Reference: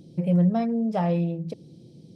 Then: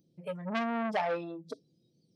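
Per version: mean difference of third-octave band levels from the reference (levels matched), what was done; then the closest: 7.0 dB: spectral noise reduction 20 dB; bass shelf 210 Hz -4.5 dB; transformer saturation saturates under 1.6 kHz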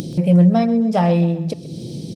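4.5 dB: treble shelf 3.5 kHz +8 dB; upward compressor, threshold -26 dBFS; on a send: feedback delay 129 ms, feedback 47%, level -16 dB; on the sum: trim +8 dB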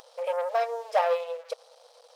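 15.0 dB: waveshaping leveller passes 2; upward compressor, threshold -38 dBFS; brick-wall FIR high-pass 460 Hz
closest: second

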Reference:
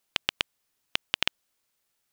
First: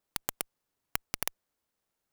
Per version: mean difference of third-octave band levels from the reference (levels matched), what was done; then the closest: 7.0 dB: treble shelf 2.1 kHz -7.5 dB; band-stop 2.5 kHz, Q 8.5; in parallel at -11 dB: Schmitt trigger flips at -37 dBFS; on the sum: sampling jitter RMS 0.097 ms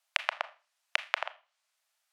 12.5 dB: low-pass that closes with the level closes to 990 Hz, closed at -32.5 dBFS; elliptic high-pass 620 Hz, stop band 50 dB; treble shelf 11 kHz -7 dB; Schroeder reverb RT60 0.33 s, combs from 26 ms, DRR 13 dB; trim +1.5 dB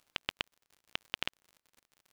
3.0 dB: reverb removal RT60 1.6 s; treble shelf 4.6 kHz -11 dB; peak limiter -16 dBFS, peak gain reduction 10 dB; crackle 68 per s -51 dBFS; trim +4.5 dB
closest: third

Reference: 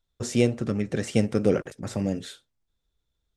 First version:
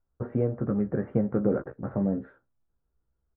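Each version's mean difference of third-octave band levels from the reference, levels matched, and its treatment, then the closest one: 8.5 dB: steep low-pass 1.5 kHz 36 dB/octave; compression 2:1, threshold -23 dBFS, peak gain reduction 5 dB; doubling 15 ms -6 dB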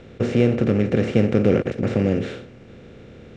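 6.5 dB: spectral levelling over time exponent 0.4; low-pass 2.8 kHz 12 dB/octave; bass shelf 170 Hz +5 dB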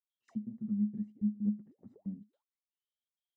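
18.0 dB: comb 1 ms, depth 55%; trance gate ".x.x.xxxx.xx" 161 bpm -24 dB; auto-wah 210–3300 Hz, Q 21, down, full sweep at -28 dBFS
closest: second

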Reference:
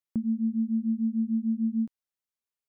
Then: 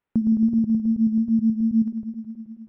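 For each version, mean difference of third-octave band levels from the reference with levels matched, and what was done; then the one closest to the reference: 4.0 dB: backward echo that repeats 107 ms, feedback 80%, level -8 dB; decimation joined by straight lines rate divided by 8×; trim +7.5 dB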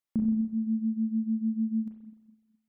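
2.0 dB: spring tank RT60 1.3 s, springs 32/42 ms, chirp 40 ms, DRR -2 dB; reverb removal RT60 0.6 s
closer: second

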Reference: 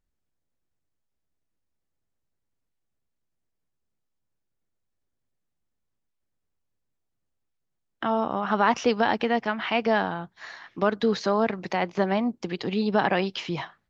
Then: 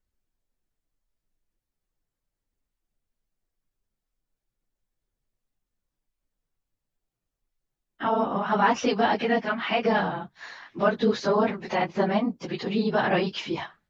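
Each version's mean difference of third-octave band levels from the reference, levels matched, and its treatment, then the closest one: 2.0 dB: phase randomisation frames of 50 ms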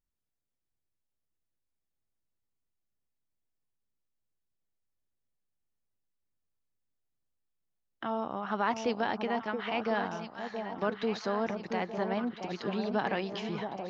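4.0 dB: echo whose repeats swap between lows and highs 675 ms, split 940 Hz, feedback 72%, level -6 dB; trim -8.5 dB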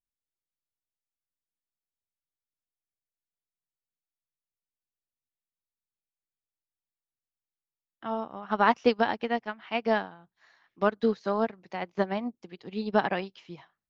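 6.0 dB: upward expansion 2.5:1, over -32 dBFS; trim +1.5 dB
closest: first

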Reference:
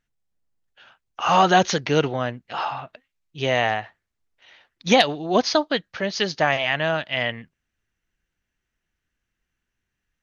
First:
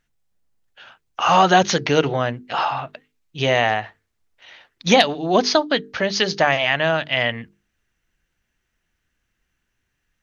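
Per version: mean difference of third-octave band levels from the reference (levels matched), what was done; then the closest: 1.5 dB: hum notches 50/100/150/200/250/300/350/400/450 Hz; in parallel at +1 dB: compression, threshold -25 dBFS, peak gain reduction 13.5 dB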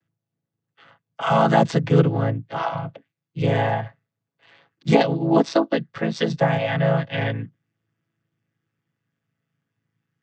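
6.5 dB: vocoder on a held chord major triad, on A2; in parallel at 0 dB: compression, threshold -28 dBFS, peak gain reduction 15.5 dB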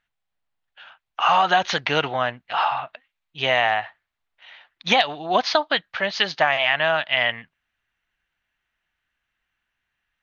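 4.0 dB: high-order bell 1.6 kHz +12 dB 3 oct; compression 6:1, threshold -8 dBFS, peak gain reduction 8 dB; trim -6 dB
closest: first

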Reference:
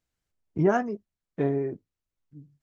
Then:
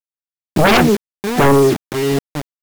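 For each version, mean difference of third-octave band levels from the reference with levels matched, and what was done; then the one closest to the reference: 15.5 dB: chunks repeated in reverse 365 ms, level -10.5 dB; bit crusher 7-bit; sine folder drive 14 dB, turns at -10 dBFS; trim +3 dB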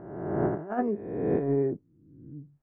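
5.5 dB: reverse spectral sustain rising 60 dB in 1.21 s; low-pass 1.2 kHz 12 dB/octave; compressor with a negative ratio -26 dBFS, ratio -0.5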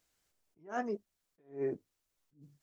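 8.0 dB: tone controls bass -9 dB, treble +4 dB; compression 2:1, threshold -40 dBFS, peak gain reduction 12 dB; attacks held to a fixed rise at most 190 dB/s; trim +6 dB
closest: second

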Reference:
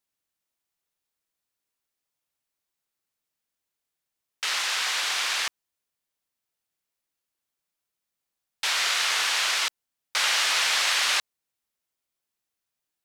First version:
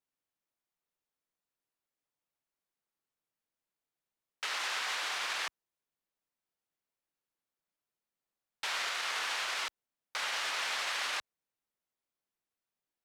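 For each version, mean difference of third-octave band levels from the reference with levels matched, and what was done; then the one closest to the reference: 3.0 dB: treble shelf 2.3 kHz -9.5 dB; peak limiter -23.5 dBFS, peak gain reduction 6.5 dB; peaking EQ 66 Hz -7.5 dB 1.2 oct; trim -2 dB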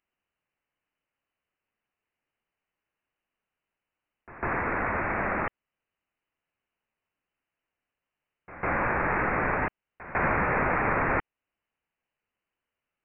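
26.0 dB: pre-echo 151 ms -20 dB; in parallel at -3 dB: compression, threshold -36 dBFS, peak gain reduction 14.5 dB; on the sum: frequency inversion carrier 3 kHz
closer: first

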